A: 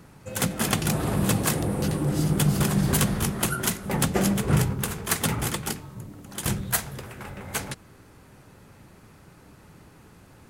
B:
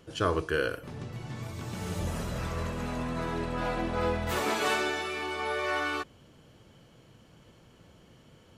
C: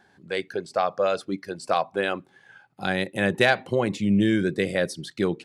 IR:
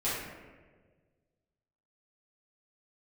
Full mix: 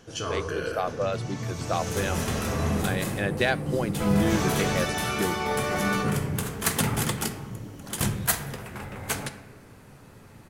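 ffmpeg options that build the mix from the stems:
-filter_complex "[0:a]adelay=1550,volume=-0.5dB,asplit=2[link_01][link_02];[link_02]volume=-15dB[link_03];[1:a]equalizer=frequency=6000:width_type=o:width=0.45:gain=10.5,alimiter=level_in=1dB:limit=-24dB:level=0:latency=1:release=19,volume=-1dB,volume=0dB,asplit=3[link_04][link_05][link_06];[link_04]atrim=end=2.82,asetpts=PTS-STARTPTS,afade=type=out:start_time=2.816:duration=0.004:curve=hsin[link_07];[link_05]atrim=start=2.82:end=4,asetpts=PTS-STARTPTS,volume=0[link_08];[link_06]atrim=start=4,asetpts=PTS-STARTPTS,afade=type=in:duration=0.004:curve=hsin[link_09];[link_07][link_08][link_09]concat=n=3:v=0:a=1,asplit=2[link_10][link_11];[link_11]volume=-7.5dB[link_12];[2:a]volume=-5dB,asplit=2[link_13][link_14];[link_14]apad=whole_len=531278[link_15];[link_01][link_15]sidechaincompress=threshold=-43dB:ratio=8:attack=11:release=1100[link_16];[3:a]atrim=start_sample=2205[link_17];[link_03][link_12]amix=inputs=2:normalize=0[link_18];[link_18][link_17]afir=irnorm=-1:irlink=0[link_19];[link_16][link_10][link_13][link_19]amix=inputs=4:normalize=0"

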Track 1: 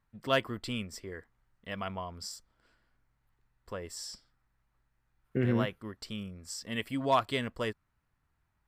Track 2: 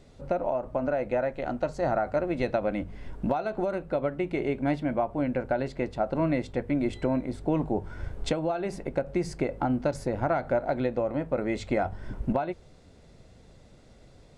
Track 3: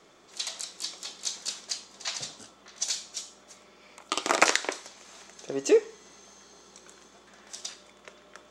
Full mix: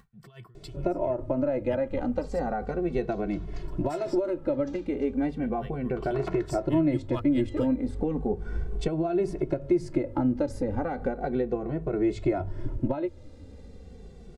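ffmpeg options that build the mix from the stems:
ffmpeg -i stem1.wav -i stem2.wav -i stem3.wav -filter_complex "[0:a]equalizer=frequency=120:width_type=o:width=1:gain=14,alimiter=limit=-20.5dB:level=0:latency=1:release=214,aeval=exprs='val(0)*pow(10,-30*(0.5-0.5*cos(2*PI*4.6*n/s))/20)':channel_layout=same,volume=0dB,asplit=2[link_01][link_02];[1:a]lowshelf=frequency=160:gain=11,adelay=550,volume=1.5dB[link_03];[2:a]lowpass=1300,dynaudnorm=framelen=280:gausssize=11:maxgain=16dB,volume=8.5dB,asoftclip=hard,volume=-8.5dB,adelay=1850,volume=-10.5dB[link_04];[link_02]apad=whole_len=456449[link_05];[link_04][link_05]sidechaincompress=threshold=-43dB:ratio=8:attack=29:release=188[link_06];[link_03][link_06]amix=inputs=2:normalize=0,equalizer=frequency=360:width=1.7:gain=10,acompressor=threshold=-24dB:ratio=2,volume=0dB[link_07];[link_01][link_07]amix=inputs=2:normalize=0,acompressor=mode=upward:threshold=-40dB:ratio=2.5,asplit=2[link_08][link_09];[link_09]adelay=2.2,afreqshift=-0.35[link_10];[link_08][link_10]amix=inputs=2:normalize=1" out.wav

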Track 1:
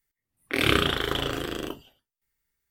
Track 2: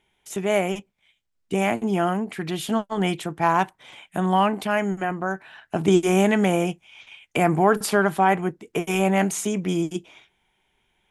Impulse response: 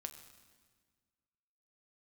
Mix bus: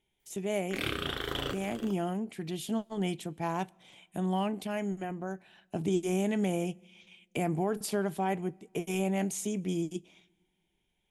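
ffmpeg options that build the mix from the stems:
-filter_complex "[0:a]adelay=200,volume=0.5dB[link_01];[1:a]equalizer=frequency=1300:width=0.88:gain=-11.5,volume=-8dB,asplit=3[link_02][link_03][link_04];[link_03]volume=-15.5dB[link_05];[link_04]apad=whole_len=128006[link_06];[link_01][link_06]sidechaincompress=threshold=-41dB:ratio=8:attack=16:release=667[link_07];[2:a]atrim=start_sample=2205[link_08];[link_05][link_08]afir=irnorm=-1:irlink=0[link_09];[link_07][link_02][link_09]amix=inputs=3:normalize=0,alimiter=limit=-19.5dB:level=0:latency=1:release=332"

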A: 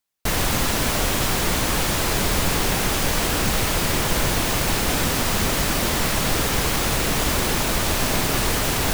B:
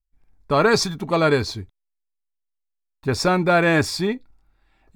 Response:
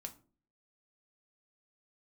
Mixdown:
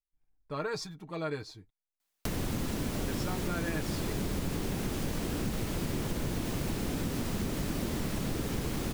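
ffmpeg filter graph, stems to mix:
-filter_complex "[0:a]lowshelf=frequency=130:gain=-9.5,acrossover=split=370[link_01][link_02];[link_02]acompressor=threshold=-37dB:ratio=10[link_03];[link_01][link_03]amix=inputs=2:normalize=0,adelay=2000,volume=-1dB[link_04];[1:a]aecho=1:1:6.5:0.59,volume=-19dB[link_05];[link_04][link_05]amix=inputs=2:normalize=0,acompressor=threshold=-28dB:ratio=6"

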